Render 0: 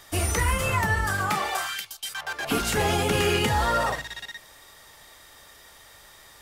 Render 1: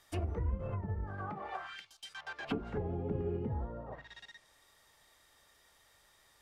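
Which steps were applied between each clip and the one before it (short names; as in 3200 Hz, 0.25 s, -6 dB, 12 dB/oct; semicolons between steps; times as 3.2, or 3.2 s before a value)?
treble ducked by the level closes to 400 Hz, closed at -20 dBFS; upward expander 1.5:1, over -39 dBFS; gain -7.5 dB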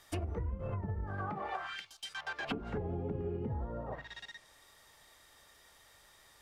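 compressor 6:1, threshold -38 dBFS, peak gain reduction 9 dB; gain +4.5 dB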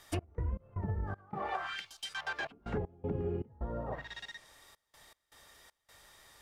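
step gate "x.x.xx.xxxxx" 79 bpm -24 dB; gain +2.5 dB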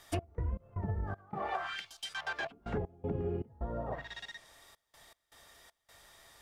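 small resonant body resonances 680/3400 Hz, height 8 dB, ringing for 90 ms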